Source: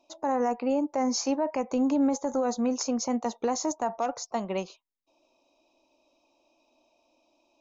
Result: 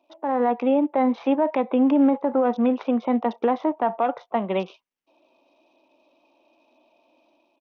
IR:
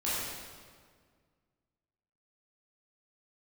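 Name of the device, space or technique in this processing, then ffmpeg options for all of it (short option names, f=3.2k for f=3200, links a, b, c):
Bluetooth headset: -af "highpass=f=160:w=0.5412,highpass=f=160:w=1.3066,dynaudnorm=f=100:g=7:m=6.5dB,aresample=8000,aresample=44100" -ar 48000 -c:a sbc -b:a 64k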